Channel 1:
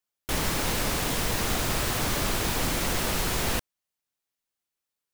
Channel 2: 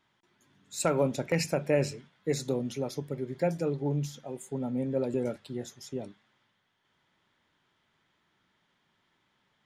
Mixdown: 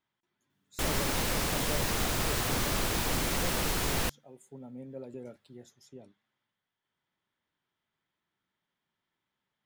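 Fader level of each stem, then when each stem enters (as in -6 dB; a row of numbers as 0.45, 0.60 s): -3.0, -13.0 dB; 0.50, 0.00 s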